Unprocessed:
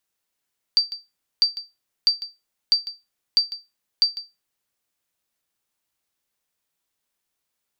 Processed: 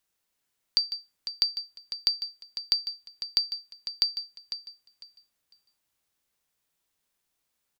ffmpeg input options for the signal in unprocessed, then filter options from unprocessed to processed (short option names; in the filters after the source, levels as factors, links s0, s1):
-f lavfi -i "aevalsrc='0.355*(sin(2*PI*4660*mod(t,0.65))*exp(-6.91*mod(t,0.65)/0.22)+0.178*sin(2*PI*4660*max(mod(t,0.65)-0.15,0))*exp(-6.91*max(mod(t,0.65)-0.15,0)/0.22))':d=3.9:s=44100"
-filter_complex "[0:a]lowshelf=f=120:g=4,acompressor=threshold=0.0891:ratio=6,asplit=2[s0][s1];[s1]aecho=0:1:501|1002|1503:0.282|0.062|0.0136[s2];[s0][s2]amix=inputs=2:normalize=0"